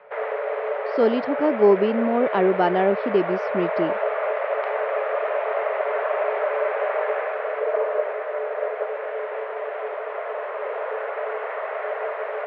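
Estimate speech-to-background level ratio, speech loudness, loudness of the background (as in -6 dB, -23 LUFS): 5.0 dB, -21.5 LUFS, -26.5 LUFS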